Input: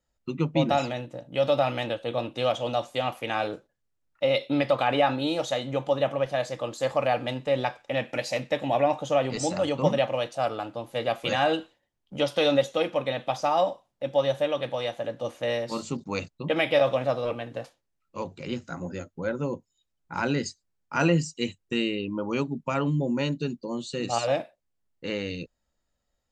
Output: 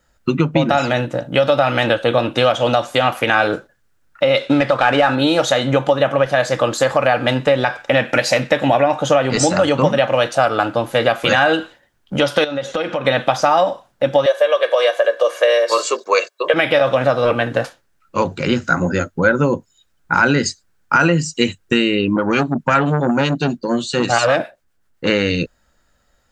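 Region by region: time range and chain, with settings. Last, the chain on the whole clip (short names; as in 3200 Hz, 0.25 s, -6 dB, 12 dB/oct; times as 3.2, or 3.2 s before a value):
4.37–5.15 CVSD 64 kbps + LPF 4600 Hz
12.44–13.05 LPF 7400 Hz + compressor 8:1, threshold -34 dBFS
14.26–16.54 steep high-pass 360 Hz + comb 1.8 ms, depth 71%
22.16–25.07 harmonic tremolo 7.6 Hz, depth 50%, crossover 750 Hz + core saturation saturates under 740 Hz
whole clip: compressor, threshold -28 dBFS; bell 1500 Hz +9.5 dB 0.52 oct; maximiser +17.5 dB; gain -1 dB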